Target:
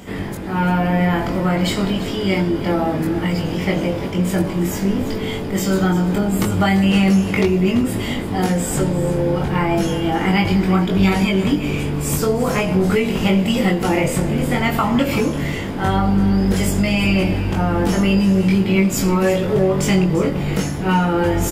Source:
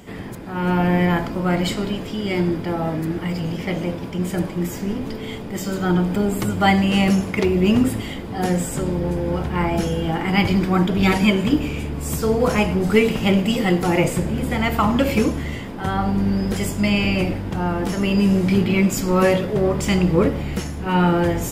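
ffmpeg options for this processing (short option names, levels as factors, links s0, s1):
-filter_complex "[0:a]acompressor=threshold=0.1:ratio=6,asplit=2[s0][s1];[s1]adelay=21,volume=0.708[s2];[s0][s2]amix=inputs=2:normalize=0,aecho=1:1:343:0.2,volume=1.68"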